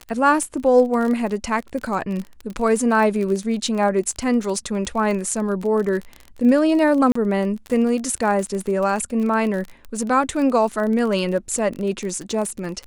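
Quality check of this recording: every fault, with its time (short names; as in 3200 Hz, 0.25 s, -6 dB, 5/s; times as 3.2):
crackle 27/s -25 dBFS
7.12–7.15 gap 34 ms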